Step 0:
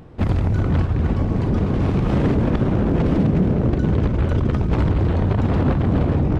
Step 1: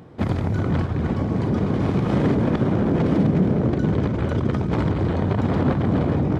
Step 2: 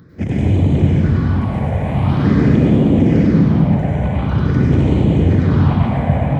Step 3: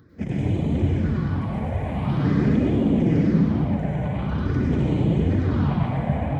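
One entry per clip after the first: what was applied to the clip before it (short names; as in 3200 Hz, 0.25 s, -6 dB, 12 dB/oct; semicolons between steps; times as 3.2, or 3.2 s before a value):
HPF 110 Hz 12 dB/oct; notch 2700 Hz, Q 14
phaser stages 6, 0.46 Hz, lowest notch 320–1500 Hz; plate-style reverb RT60 1.8 s, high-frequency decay 0.9×, pre-delay 85 ms, DRR -5.5 dB; gain +1.5 dB
flange 1.1 Hz, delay 2.4 ms, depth 4.7 ms, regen -35%; gain -3.5 dB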